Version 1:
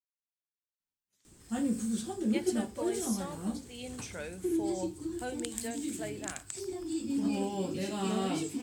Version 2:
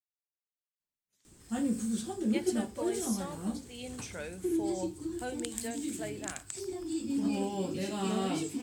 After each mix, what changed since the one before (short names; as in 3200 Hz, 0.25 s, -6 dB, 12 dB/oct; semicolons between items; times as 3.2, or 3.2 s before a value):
none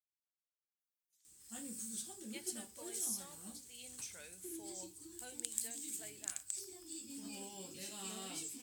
master: add pre-emphasis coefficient 0.9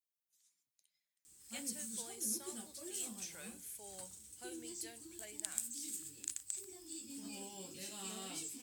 speech: entry -0.80 s; reverb: on